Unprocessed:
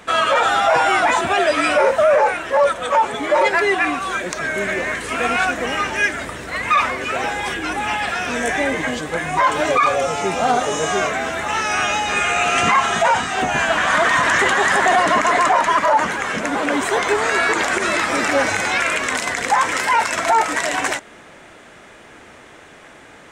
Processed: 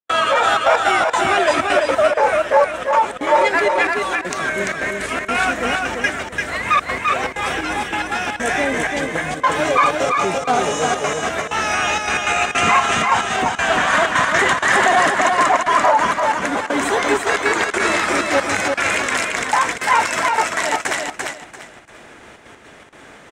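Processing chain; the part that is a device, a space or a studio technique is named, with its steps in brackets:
trance gate with a delay (gate pattern ".xxxxx.x.xx" 159 BPM −60 dB; repeating echo 342 ms, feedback 25%, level −3.5 dB)

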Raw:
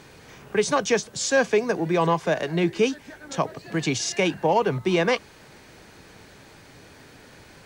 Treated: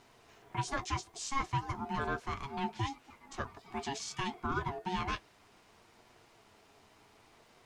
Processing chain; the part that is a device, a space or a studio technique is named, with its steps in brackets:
alien voice (ring modulation 550 Hz; flanger 0.66 Hz, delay 8.1 ms, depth 1.8 ms, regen −46%)
level −7 dB

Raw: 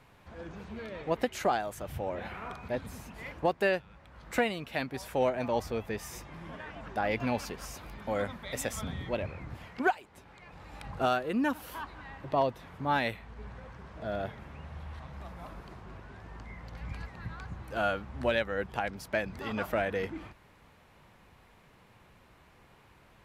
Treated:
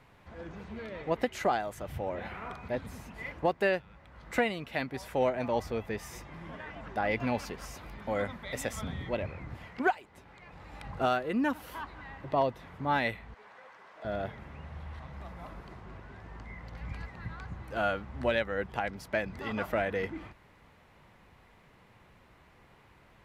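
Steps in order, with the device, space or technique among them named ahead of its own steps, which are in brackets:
inside a helmet (high-shelf EQ 5,300 Hz −5 dB; hollow resonant body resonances 2,000 Hz, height 8 dB)
0:13.34–0:14.05: high-pass filter 600 Hz 12 dB per octave

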